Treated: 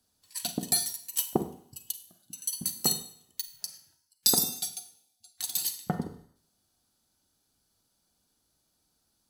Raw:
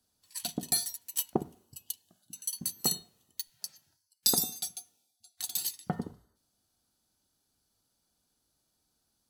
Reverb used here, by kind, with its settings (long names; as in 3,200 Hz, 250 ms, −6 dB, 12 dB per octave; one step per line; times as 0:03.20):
four-comb reverb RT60 0.55 s, combs from 33 ms, DRR 10 dB
level +2.5 dB